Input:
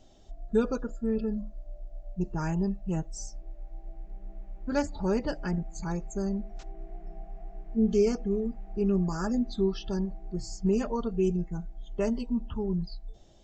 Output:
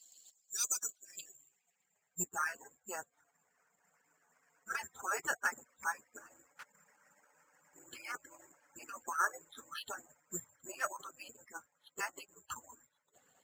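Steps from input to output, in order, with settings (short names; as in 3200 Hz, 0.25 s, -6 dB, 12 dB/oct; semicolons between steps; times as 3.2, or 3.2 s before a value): median-filter separation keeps percussive; careless resampling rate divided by 6×, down filtered, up zero stuff; band-pass sweep 4700 Hz -> 1500 Hz, 0.7–2.32; gain +10 dB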